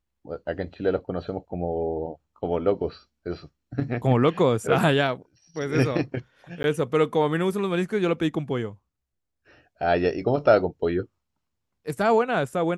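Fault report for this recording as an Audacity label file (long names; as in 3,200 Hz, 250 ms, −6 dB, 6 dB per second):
6.630000	6.640000	drop-out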